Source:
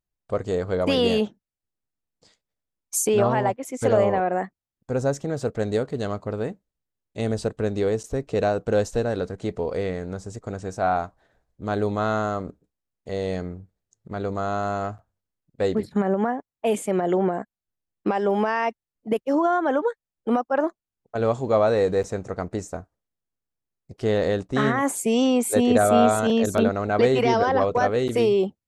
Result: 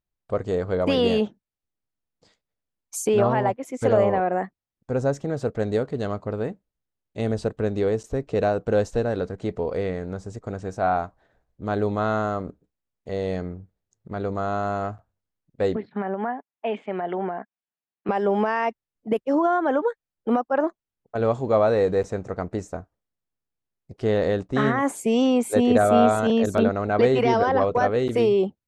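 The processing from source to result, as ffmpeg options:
ffmpeg -i in.wav -filter_complex "[0:a]asettb=1/sr,asplit=3[link_01][link_02][link_03];[link_01]atrim=end=15.764[link_04];[link_02]atrim=start=15.76:end=18.09,asetpts=PTS-STARTPTS,afade=type=in:duration=0.004:curve=qsin,afade=type=out:start_time=2.326:duration=0.004:curve=qsin,highpass=280,equalizer=frequency=330:width_type=q:width=4:gain=-9,equalizer=frequency=520:width_type=q:width=4:gain=-9,equalizer=frequency=1200:width_type=q:width=4:gain=-3,lowpass=frequency=3300:width=0.5412,lowpass=frequency=3300:width=1.3066[link_05];[link_03]atrim=start=18.086[link_06];[link_04][link_05]acrossfade=duration=0.004:curve1=hsin:curve2=qsin[link_07];[link_07][link_06]acrossfade=duration=0.004:curve1=qsin:curve2=hsin,aemphasis=mode=reproduction:type=cd" out.wav

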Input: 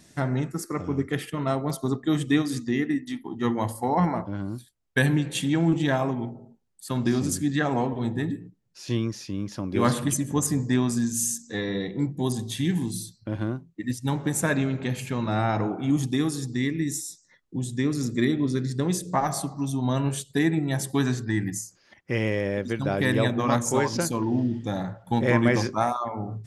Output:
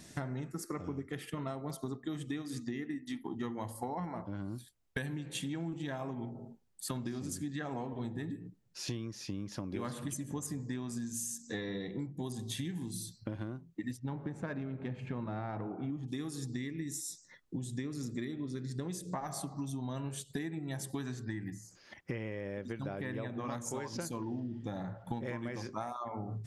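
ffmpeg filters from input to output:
ffmpeg -i in.wav -filter_complex "[0:a]asplit=3[link_01][link_02][link_03];[link_01]afade=type=out:start_time=13.96:duration=0.02[link_04];[link_02]adynamicsmooth=sensitivity=0.5:basefreq=1900,afade=type=in:start_time=13.96:duration=0.02,afade=type=out:start_time=16.07:duration=0.02[link_05];[link_03]afade=type=in:start_time=16.07:duration=0.02[link_06];[link_04][link_05][link_06]amix=inputs=3:normalize=0,asettb=1/sr,asplit=3[link_07][link_08][link_09];[link_07]atrim=end=21.334[link_10];[link_08]atrim=start=21.33:end=23.45,asetpts=PTS-STARTPTS,afade=type=in:duration=0.004:curve=qsin,afade=type=out:start_time=2.116:duration=0.004:curve=qsin,acrossover=split=3000[link_11][link_12];[link_12]acompressor=threshold=-51dB:ratio=4:attack=1:release=60[link_13];[link_11][link_13]amix=inputs=2:normalize=0[link_14];[link_09]atrim=start=23.446[link_15];[link_10][link_14]acrossfade=duration=0.004:curve1=hsin:curve2=qsin[link_16];[link_16][link_15]acrossfade=duration=0.004:curve1=qsin:curve2=hsin,asettb=1/sr,asplit=3[link_17][link_18][link_19];[link_17]atrim=end=24.404[link_20];[link_18]atrim=start=24.4:end=25.25,asetpts=PTS-STARTPTS,afade=type=in:duration=0.004:curve=qsin,afade=type=out:start_time=0.846:duration=0.004:curve=qsin,highshelf=frequency=4100:gain=-7[link_21];[link_19]atrim=start=25.246[link_22];[link_20][link_21]acrossfade=duration=0.004:curve1=hsin:curve2=qsin[link_23];[link_23][link_22]acrossfade=duration=0.004:curve1=qsin:curve2=hsin,acompressor=threshold=-36dB:ratio=16,volume=1dB" out.wav

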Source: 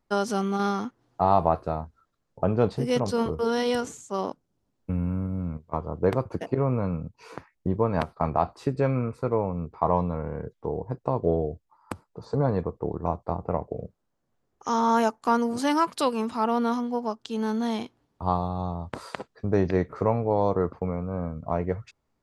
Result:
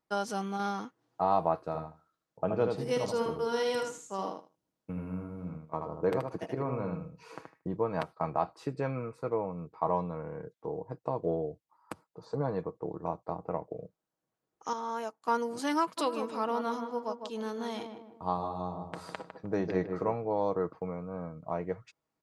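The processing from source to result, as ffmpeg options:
ffmpeg -i in.wav -filter_complex "[0:a]asplit=3[link_01][link_02][link_03];[link_01]afade=type=out:start_time=1.7:duration=0.02[link_04];[link_02]aecho=1:1:77|154|231:0.562|0.101|0.0182,afade=type=in:start_time=1.7:duration=0.02,afade=type=out:start_time=7.73:duration=0.02[link_05];[link_03]afade=type=in:start_time=7.73:duration=0.02[link_06];[link_04][link_05][link_06]amix=inputs=3:normalize=0,asplit=3[link_07][link_08][link_09];[link_07]afade=type=out:start_time=15.97:duration=0.02[link_10];[link_08]asplit=2[link_11][link_12];[link_12]adelay=154,lowpass=frequency=1300:poles=1,volume=-6dB,asplit=2[link_13][link_14];[link_14]adelay=154,lowpass=frequency=1300:poles=1,volume=0.45,asplit=2[link_15][link_16];[link_16]adelay=154,lowpass=frequency=1300:poles=1,volume=0.45,asplit=2[link_17][link_18];[link_18]adelay=154,lowpass=frequency=1300:poles=1,volume=0.45,asplit=2[link_19][link_20];[link_20]adelay=154,lowpass=frequency=1300:poles=1,volume=0.45[link_21];[link_11][link_13][link_15][link_17][link_19][link_21]amix=inputs=6:normalize=0,afade=type=in:start_time=15.97:duration=0.02,afade=type=out:start_time=20.13:duration=0.02[link_22];[link_09]afade=type=in:start_time=20.13:duration=0.02[link_23];[link_10][link_22][link_23]amix=inputs=3:normalize=0,asplit=3[link_24][link_25][link_26];[link_24]atrim=end=14.732[link_27];[link_25]atrim=start=14.728:end=15.282,asetpts=PTS-STARTPTS,volume=-7.5dB[link_28];[link_26]atrim=start=15.278[link_29];[link_27][link_28]acrossfade=duration=0.004:curve1=hsin:curve2=hsin[link_30];[link_30][link_29]acrossfade=duration=0.004:curve1=hsin:curve2=hsin,highpass=frequency=230:poles=1,aecho=1:1:6.3:0.36,volume=-6dB" out.wav

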